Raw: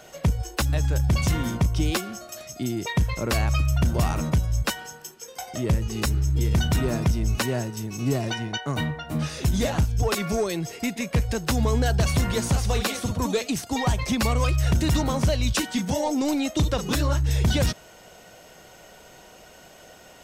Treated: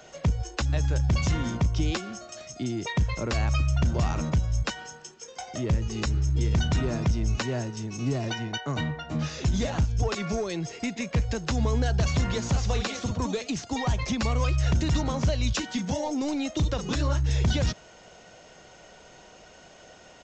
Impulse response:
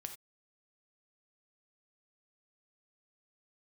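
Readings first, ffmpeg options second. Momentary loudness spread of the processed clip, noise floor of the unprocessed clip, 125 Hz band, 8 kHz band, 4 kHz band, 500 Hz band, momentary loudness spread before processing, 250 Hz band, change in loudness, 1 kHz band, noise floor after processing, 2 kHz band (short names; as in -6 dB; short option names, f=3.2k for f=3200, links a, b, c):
7 LU, -49 dBFS, -2.0 dB, -5.0 dB, -3.5 dB, -4.0 dB, 7 LU, -3.0 dB, -3.0 dB, -4.0 dB, -51 dBFS, -3.5 dB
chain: -filter_complex "[0:a]aresample=16000,aresample=44100,acrossover=split=160[a][b];[b]acompressor=threshold=-24dB:ratio=6[c];[a][c]amix=inputs=2:normalize=0,volume=-2dB"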